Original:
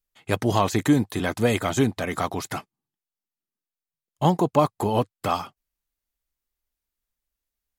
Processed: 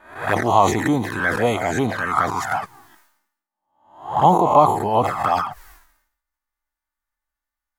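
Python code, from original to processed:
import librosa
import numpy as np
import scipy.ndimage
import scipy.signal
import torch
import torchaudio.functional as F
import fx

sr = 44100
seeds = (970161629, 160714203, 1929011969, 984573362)

y = fx.spec_swells(x, sr, rise_s=0.56)
y = fx.dynamic_eq(y, sr, hz=550.0, q=1.3, threshold_db=-34.0, ratio=4.0, max_db=5)
y = fx.env_flanger(y, sr, rest_ms=3.4, full_db=-14.5)
y = fx.band_shelf(y, sr, hz=1200.0, db=12.5, octaves=1.7)
y = fx.sustainer(y, sr, db_per_s=76.0)
y = F.gain(torch.from_numpy(y), -3.0).numpy()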